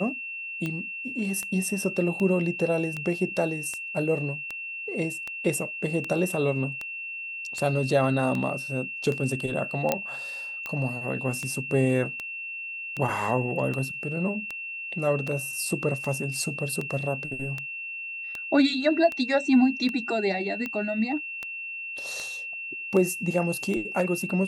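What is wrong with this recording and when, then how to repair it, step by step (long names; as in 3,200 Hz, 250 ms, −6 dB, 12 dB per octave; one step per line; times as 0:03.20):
scratch tick 78 rpm −18 dBFS
whistle 2,700 Hz −33 dBFS
0:09.92: click −8 dBFS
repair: click removal
notch filter 2,700 Hz, Q 30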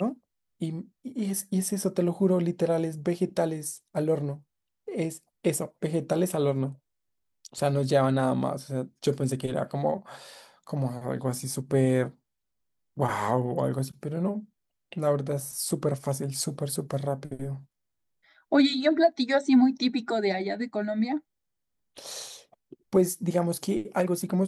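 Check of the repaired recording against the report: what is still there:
none of them is left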